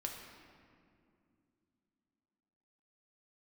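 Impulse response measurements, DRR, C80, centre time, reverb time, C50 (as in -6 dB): 0.5 dB, 5.0 dB, 64 ms, 2.5 s, 3.5 dB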